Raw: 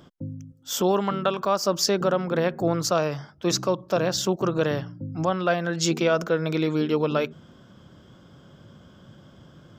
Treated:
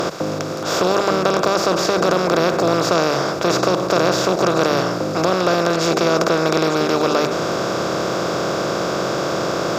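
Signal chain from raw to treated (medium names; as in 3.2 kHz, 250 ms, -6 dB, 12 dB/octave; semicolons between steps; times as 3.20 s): spectral levelling over time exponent 0.2; treble shelf 5.6 kHz -8.5 dB; hum notches 50/100/150/200 Hz; trim -1.5 dB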